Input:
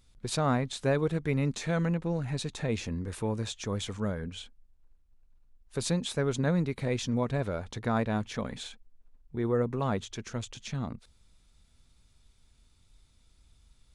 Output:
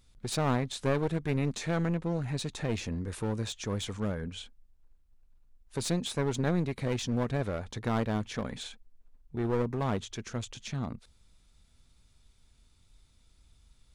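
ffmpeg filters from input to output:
-af "aeval=exprs='clip(val(0),-1,0.0282)':c=same"

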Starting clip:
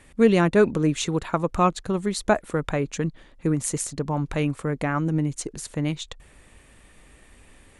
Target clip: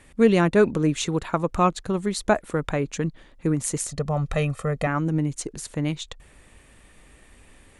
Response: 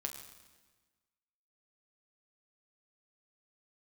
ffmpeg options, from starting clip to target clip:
-filter_complex "[0:a]asettb=1/sr,asplit=3[s0][s1][s2];[s0]atrim=end=3.894[s3];[s1]atrim=start=3.89:end=4.87,asetpts=PTS-STARTPTS,afade=t=in:d=0.004:c=qsin,afade=t=out:st=0.976:d=0.004:c=qsin,aecho=1:1:1.6:0.76,atrim=end_sample=43218[s4];[s2]atrim=start=4.866[s5];[s3][s4]acrossfade=d=0.004:c1=hsin:c2=qsin[s6];[s6][s5]acrossfade=d=0.004:c1=qsin:c2=hsin"

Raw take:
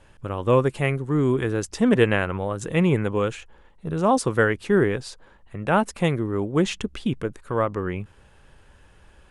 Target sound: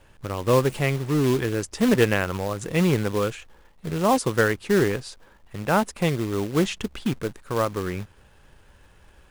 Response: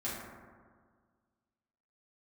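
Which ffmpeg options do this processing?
-filter_complex "[0:a]asettb=1/sr,asplit=3[s0][s1][s2];[s0]atrim=end=0.624[s3];[s1]atrim=start=0.62:end=1.38,asetpts=PTS-STARTPTS,afade=t=in:d=0.004:c=qsin,afade=t=out:st=0.756:d=0.004:c=qsin,aeval=exprs='val(0)+0.5*0.0178*sgn(val(0))':c=same[s4];[s2]atrim=start=1.376[s5];[s3][s4]acrossfade=d=0.004:c1=hsin:c2=qsin[s6];[s6][s5]acrossfade=d=0.004:c1=qsin:c2=hsin,acrossover=split=1600[s7][s8];[s7]acrusher=bits=3:mode=log:mix=0:aa=0.000001[s9];[s9][s8]amix=inputs=2:normalize=0,volume=0.891"

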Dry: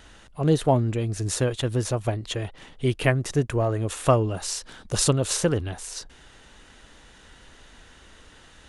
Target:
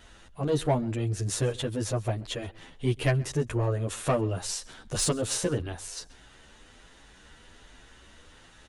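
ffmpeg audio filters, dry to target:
-filter_complex "[0:a]asoftclip=type=tanh:threshold=0.211,asplit=2[s0][s1];[s1]aecho=0:1:132:0.0668[s2];[s0][s2]amix=inputs=2:normalize=0,asplit=2[s3][s4];[s4]adelay=9.8,afreqshift=1.2[s5];[s3][s5]amix=inputs=2:normalize=1"

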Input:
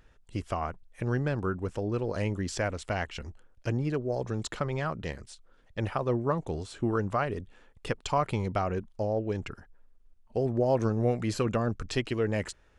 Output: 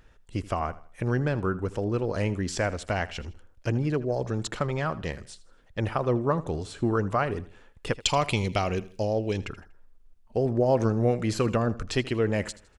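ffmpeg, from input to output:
-filter_complex "[0:a]asettb=1/sr,asplit=3[s0][s1][s2];[s0]atrim=end=8.024[s3];[s1]atrim=start=8.02:end=9.38,asetpts=PTS-STARTPTS,afade=t=in:d=0.004:c=qsin,afade=t=out:st=1.356:d=0.004:c=qsin,highshelf=f=2000:t=q:w=1.5:g=8.5[s4];[s2]atrim=start=9.376[s5];[s3][s4]acrossfade=d=0.004:c1=hsin:c2=qsin[s6];[s6][s5]acrossfade=d=0.004:c1=qsin:c2=hsin,aecho=1:1:80|160|240:0.126|0.0453|0.0163,volume=1.41"

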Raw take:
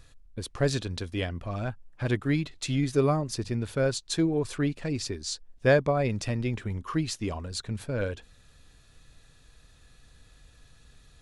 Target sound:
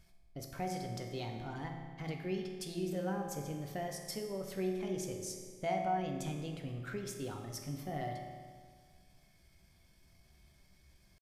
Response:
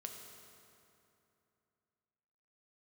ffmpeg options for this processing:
-filter_complex "[0:a]acompressor=threshold=0.0355:ratio=3,asetrate=57191,aresample=44100,atempo=0.771105[s0];[1:a]atrim=start_sample=2205,asetrate=74970,aresample=44100[s1];[s0][s1]afir=irnorm=-1:irlink=0"

